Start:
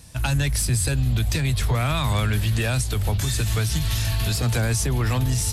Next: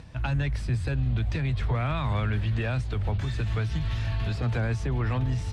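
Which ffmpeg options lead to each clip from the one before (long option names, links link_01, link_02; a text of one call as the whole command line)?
ffmpeg -i in.wav -af "acompressor=mode=upward:threshold=-33dB:ratio=2.5,lowpass=2400,volume=-4.5dB" out.wav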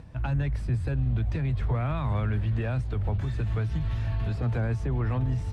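ffmpeg -i in.wav -af "equalizer=frequency=4600:width=0.4:gain=-9.5" out.wav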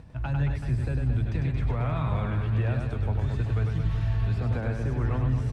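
ffmpeg -i in.wav -af "aecho=1:1:100|225|381.2|576.6|820.7:0.631|0.398|0.251|0.158|0.1,volume=-1.5dB" out.wav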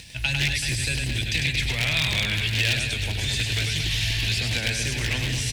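ffmpeg -i in.wav -af "aeval=exprs='0.0944*(abs(mod(val(0)/0.0944+3,4)-2)-1)':channel_layout=same,aexciter=amount=12.9:drive=9.2:freq=2000,volume=-2dB" out.wav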